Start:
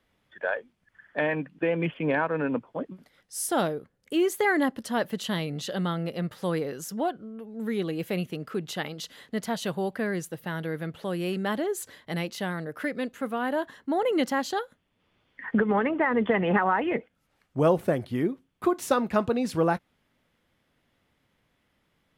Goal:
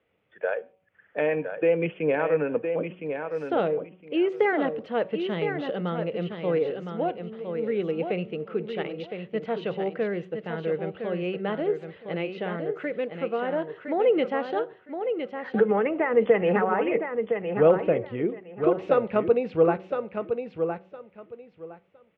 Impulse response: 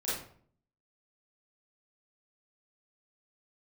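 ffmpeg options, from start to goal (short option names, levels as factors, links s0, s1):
-filter_complex "[0:a]bandreject=f=188.4:t=h:w=4,bandreject=f=376.8:t=h:w=4,bandreject=f=565.2:t=h:w=4,bandreject=f=753.6:t=h:w=4,bandreject=f=942:t=h:w=4,bandreject=f=1130.4:t=h:w=4,asoftclip=type=hard:threshold=0.251,highpass=100,equalizer=f=140:t=q:w=4:g=-4,equalizer=f=250:t=q:w=4:g=-7,equalizer=f=470:t=q:w=4:g=8,equalizer=f=1000:t=q:w=4:g=-6,equalizer=f=1700:t=q:w=4:g=-6,equalizer=f=2600:t=q:w=4:g=4,lowpass=f=2700:w=0.5412,lowpass=f=2700:w=1.3066,aecho=1:1:1012|2024|3036:0.447|0.0893|0.0179,asplit=2[s0][s1];[1:a]atrim=start_sample=2205,afade=t=out:st=0.22:d=0.01,atrim=end_sample=10143[s2];[s1][s2]afir=irnorm=-1:irlink=0,volume=0.0398[s3];[s0][s3]amix=inputs=2:normalize=0"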